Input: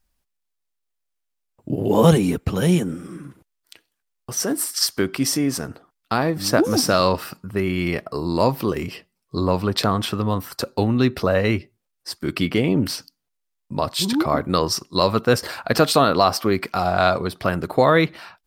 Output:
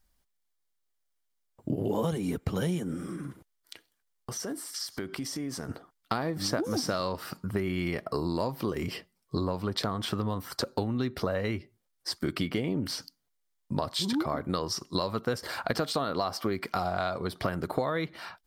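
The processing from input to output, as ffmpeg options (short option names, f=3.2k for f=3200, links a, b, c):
-filter_complex "[0:a]asettb=1/sr,asplit=3[a][b][c];[a]atrim=end=3.034[d];[b]atrim=start=3.03:end=5.69,asetpts=PTS-STARTPTS,afade=t=in:d=0.004:c=qsin,afade=t=out:st=2.656:d=0.004:c=qsin,acompressor=threshold=-32dB:ratio=6:attack=3.2:release=140:knee=1:detection=peak[e];[c]atrim=start=5.686[f];[d][e]acrossfade=d=0.004:c1=hsin:c2=qsin[g];[g][f]acrossfade=d=0.004:c1=qsin:c2=hsin,acompressor=threshold=-26dB:ratio=10,bandreject=f=2.6k:w=11,acrossover=split=7400[h][i];[i]acompressor=threshold=-45dB:ratio=4:attack=1:release=60[j];[h][j]amix=inputs=2:normalize=0"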